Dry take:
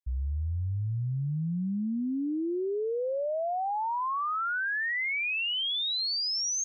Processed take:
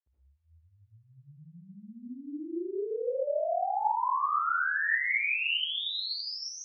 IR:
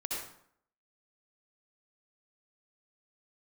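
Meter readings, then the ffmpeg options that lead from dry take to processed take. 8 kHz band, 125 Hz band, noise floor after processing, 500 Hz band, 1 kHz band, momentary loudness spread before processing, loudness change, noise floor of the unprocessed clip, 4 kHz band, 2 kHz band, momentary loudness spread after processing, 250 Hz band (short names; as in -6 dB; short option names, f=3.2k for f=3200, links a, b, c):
n/a, under -20 dB, -68 dBFS, -1.0 dB, +1.5 dB, 5 LU, +0.5 dB, -30 dBFS, -3.5 dB, +1.5 dB, 14 LU, -9.5 dB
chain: -filter_complex "[0:a]highpass=550,lowpass=3.2k[a];[1:a]atrim=start_sample=2205[b];[a][b]afir=irnorm=-1:irlink=0,volume=-1dB"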